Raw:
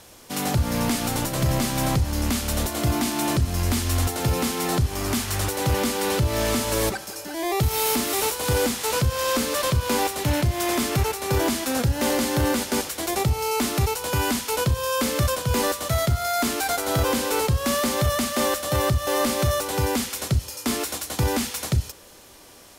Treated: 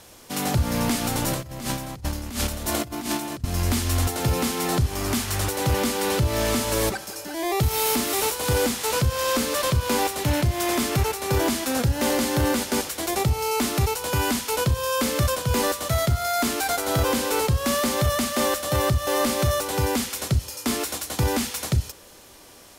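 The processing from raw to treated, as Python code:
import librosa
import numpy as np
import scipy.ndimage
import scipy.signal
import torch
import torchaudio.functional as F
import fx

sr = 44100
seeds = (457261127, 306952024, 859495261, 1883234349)

y = fx.over_compress(x, sr, threshold_db=-28.0, ratio=-0.5, at=(1.26, 3.44))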